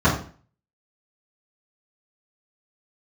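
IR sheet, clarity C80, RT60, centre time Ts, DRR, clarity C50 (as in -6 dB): 10.5 dB, 0.45 s, 28 ms, -11.0 dB, 6.5 dB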